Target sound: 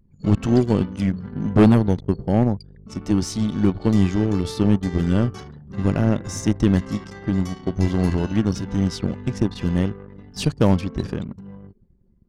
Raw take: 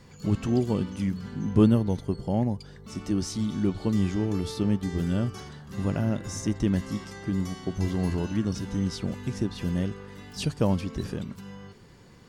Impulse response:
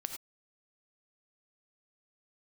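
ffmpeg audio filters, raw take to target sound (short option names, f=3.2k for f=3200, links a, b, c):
-af "acontrast=78,anlmdn=6.31,aeval=exprs='0.668*(cos(1*acos(clip(val(0)/0.668,-1,1)))-cos(1*PI/2))+0.266*(cos(2*acos(clip(val(0)/0.668,-1,1)))-cos(2*PI/2))+0.119*(cos(4*acos(clip(val(0)/0.668,-1,1)))-cos(4*PI/2))+0.0596*(cos(5*acos(clip(val(0)/0.668,-1,1)))-cos(5*PI/2))+0.0668*(cos(7*acos(clip(val(0)/0.668,-1,1)))-cos(7*PI/2))':c=same"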